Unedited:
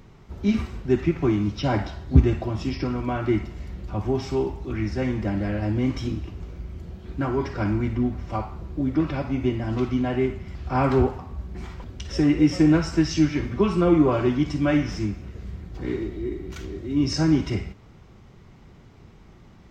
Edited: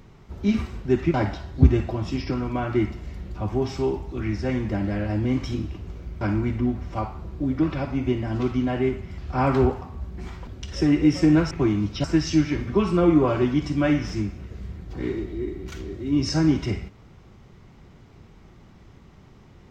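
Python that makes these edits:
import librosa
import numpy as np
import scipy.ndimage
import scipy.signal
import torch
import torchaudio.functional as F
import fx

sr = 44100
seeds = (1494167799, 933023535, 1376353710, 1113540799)

y = fx.edit(x, sr, fx.move(start_s=1.14, length_s=0.53, to_s=12.88),
    fx.cut(start_s=6.74, length_s=0.84), tone=tone)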